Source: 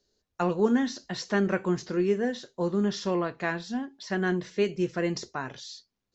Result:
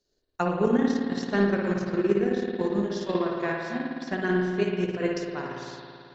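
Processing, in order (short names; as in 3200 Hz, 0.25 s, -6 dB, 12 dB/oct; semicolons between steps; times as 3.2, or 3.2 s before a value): spring tank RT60 2.5 s, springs 55 ms, chirp 20 ms, DRR -3.5 dB; transient shaper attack +7 dB, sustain -9 dB; gain -4.5 dB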